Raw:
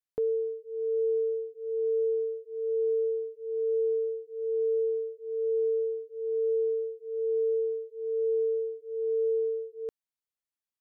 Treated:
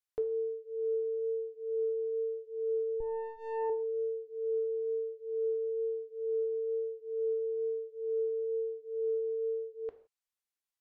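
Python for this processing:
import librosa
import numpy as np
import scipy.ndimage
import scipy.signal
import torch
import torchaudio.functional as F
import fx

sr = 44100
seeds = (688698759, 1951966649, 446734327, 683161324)

y = fx.lower_of_two(x, sr, delay_ms=1.7, at=(3.0, 3.7))
y = fx.env_lowpass_down(y, sr, base_hz=350.0, full_db=-24.5)
y = fx.peak_eq(y, sr, hz=200.0, db=-12.0, octaves=2.0)
y = fx.rev_gated(y, sr, seeds[0], gate_ms=190, shape='falling', drr_db=8.0)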